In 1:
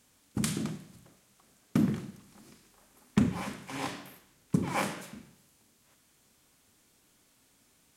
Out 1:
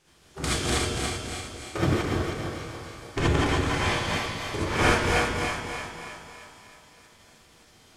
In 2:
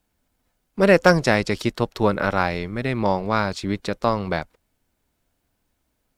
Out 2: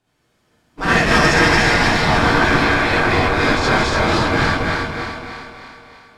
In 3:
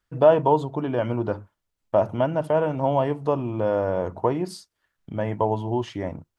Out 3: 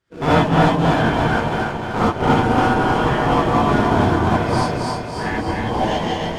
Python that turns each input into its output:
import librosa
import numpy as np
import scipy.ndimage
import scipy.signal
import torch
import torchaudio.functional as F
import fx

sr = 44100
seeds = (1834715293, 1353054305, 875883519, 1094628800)

p1 = fx.reverse_delay_fb(x, sr, ms=142, feedback_pct=66, wet_db=-1)
p2 = fx.spec_gate(p1, sr, threshold_db=-10, keep='weak')
p3 = fx.dynamic_eq(p2, sr, hz=1600.0, q=6.0, threshold_db=-43.0, ratio=4.0, max_db=3)
p4 = fx.sample_hold(p3, sr, seeds[0], rate_hz=1000.0, jitter_pct=20)
p5 = p3 + (p4 * librosa.db_to_amplitude(-6.0))
p6 = np.clip(p5, -10.0 ** (-20.5 / 20.0), 10.0 ** (-20.5 / 20.0))
p7 = fx.air_absorb(p6, sr, metres=58.0)
p8 = p7 + fx.echo_split(p7, sr, split_hz=510.0, low_ms=206, high_ms=312, feedback_pct=52, wet_db=-7, dry=0)
p9 = fx.rev_gated(p8, sr, seeds[1], gate_ms=100, shape='rising', drr_db=-7.0)
y = p9 * librosa.db_to_amplitude(2.5)